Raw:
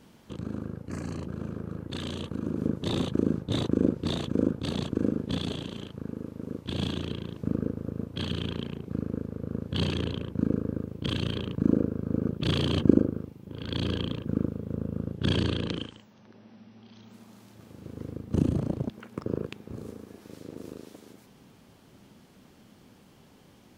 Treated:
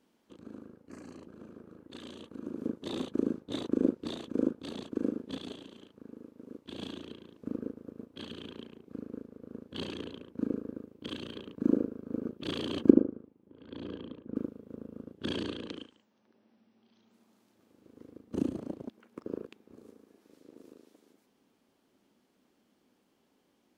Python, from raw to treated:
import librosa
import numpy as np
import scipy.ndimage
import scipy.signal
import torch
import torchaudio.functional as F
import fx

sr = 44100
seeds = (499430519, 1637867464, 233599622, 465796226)

y = fx.lowpass(x, sr, hz=1200.0, slope=6, at=(12.9, 14.36))
y = fx.low_shelf_res(y, sr, hz=190.0, db=-10.0, q=1.5)
y = fx.upward_expand(y, sr, threshold_db=-43.0, expansion=1.5)